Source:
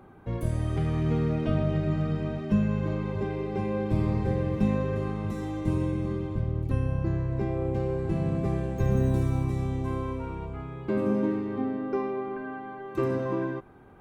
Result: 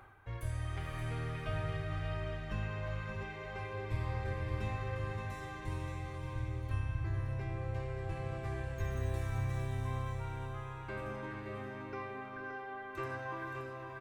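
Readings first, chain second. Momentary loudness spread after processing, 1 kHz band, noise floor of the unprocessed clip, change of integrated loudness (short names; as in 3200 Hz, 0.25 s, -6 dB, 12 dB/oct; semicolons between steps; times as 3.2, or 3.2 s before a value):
6 LU, -5.5 dB, -41 dBFS, -11.0 dB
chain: diffused feedback echo 0.497 s, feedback 40%, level -6.5 dB; reverse; upward compressor, threshold -32 dBFS; reverse; EQ curve 110 Hz 0 dB, 180 Hz -18 dB, 1700 Hz +7 dB, 4100 Hz +3 dB; echo 0.574 s -8 dB; gain -8 dB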